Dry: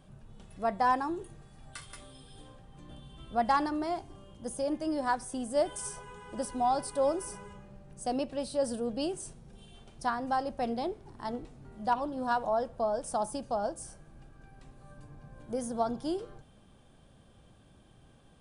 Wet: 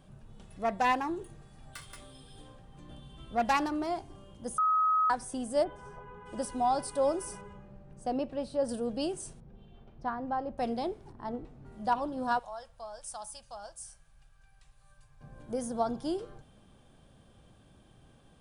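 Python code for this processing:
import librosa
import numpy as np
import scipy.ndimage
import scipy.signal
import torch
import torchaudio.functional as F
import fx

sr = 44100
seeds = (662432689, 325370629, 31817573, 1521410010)

y = fx.self_delay(x, sr, depth_ms=0.14, at=(0.56, 3.87))
y = fx.lowpass(y, sr, hz=1600.0, slope=12, at=(5.63, 6.25), fade=0.02)
y = fx.lowpass(y, sr, hz=2000.0, slope=6, at=(7.41, 8.69))
y = fx.spacing_loss(y, sr, db_at_10k=37, at=(9.4, 10.58))
y = fx.lowpass(y, sr, hz=fx.line((11.11, 1000.0), (11.65, 2200.0)), slope=6, at=(11.11, 11.65), fade=0.02)
y = fx.tone_stack(y, sr, knobs='10-0-10', at=(12.39, 15.21))
y = fx.edit(y, sr, fx.bleep(start_s=4.58, length_s=0.52, hz=1270.0, db=-23.0), tone=tone)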